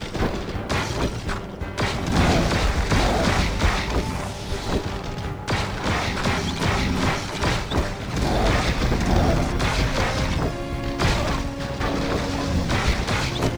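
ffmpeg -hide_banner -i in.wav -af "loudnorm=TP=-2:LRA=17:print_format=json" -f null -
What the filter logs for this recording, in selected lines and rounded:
"input_i" : "-23.6",
"input_tp" : "-7.8",
"input_lra" : "1.8",
"input_thresh" : "-33.6",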